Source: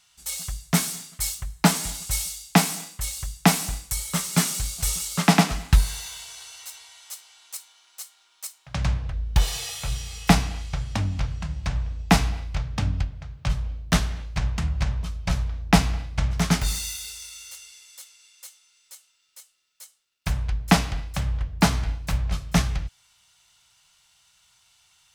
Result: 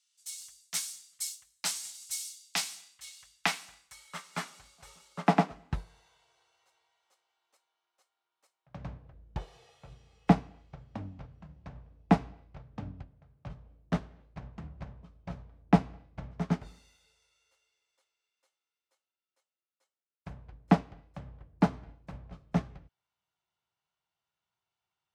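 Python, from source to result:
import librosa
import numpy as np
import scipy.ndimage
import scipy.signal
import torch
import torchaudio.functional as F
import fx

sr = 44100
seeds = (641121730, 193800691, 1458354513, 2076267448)

y = fx.filter_sweep_bandpass(x, sr, from_hz=6200.0, to_hz=370.0, start_s=2.22, end_s=5.87, q=0.79)
y = fx.upward_expand(y, sr, threshold_db=-41.0, expansion=1.5)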